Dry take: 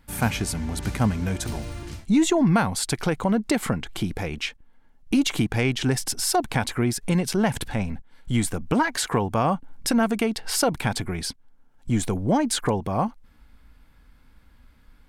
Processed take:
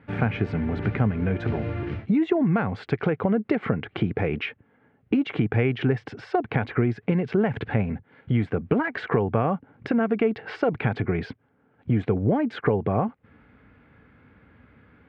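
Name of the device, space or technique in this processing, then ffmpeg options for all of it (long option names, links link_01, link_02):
bass amplifier: -af "acompressor=threshold=-29dB:ratio=4,highpass=frequency=87:width=0.5412,highpass=frequency=87:width=1.3066,equalizer=frequency=110:width_type=q:width=4:gain=4,equalizer=frequency=430:width_type=q:width=4:gain=7,equalizer=frequency=960:width_type=q:width=4:gain=-6,lowpass=frequency=2400:width=0.5412,lowpass=frequency=2400:width=1.3066,volume=7.5dB"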